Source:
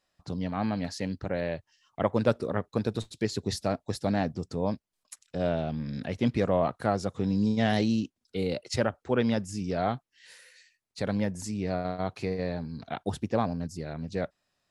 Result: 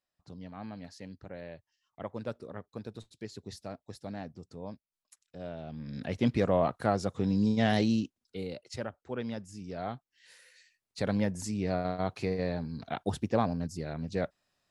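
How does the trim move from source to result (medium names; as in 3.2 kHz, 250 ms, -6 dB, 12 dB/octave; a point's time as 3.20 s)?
5.55 s -13 dB
6.12 s -1 dB
7.96 s -1 dB
8.60 s -10.5 dB
9.59 s -10.5 dB
11.01 s -0.5 dB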